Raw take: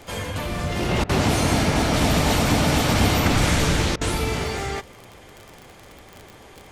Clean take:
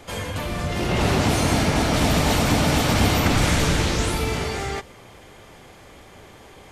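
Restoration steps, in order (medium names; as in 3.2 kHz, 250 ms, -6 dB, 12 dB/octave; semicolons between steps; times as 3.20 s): de-click; interpolate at 1.04/3.96 s, 51 ms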